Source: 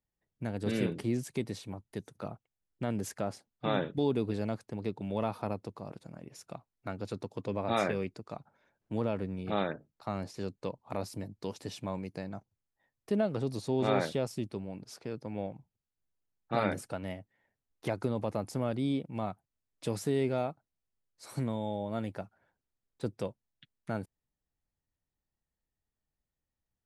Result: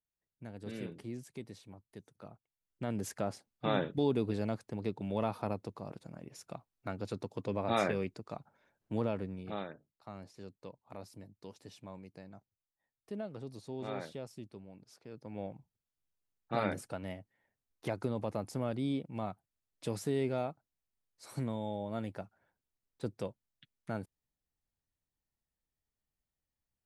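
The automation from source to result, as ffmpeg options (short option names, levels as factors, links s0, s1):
-af "volume=2.37,afade=t=in:st=2.33:d=0.82:silence=0.316228,afade=t=out:st=8.99:d=0.7:silence=0.298538,afade=t=in:st=15.06:d=0.46:silence=0.375837"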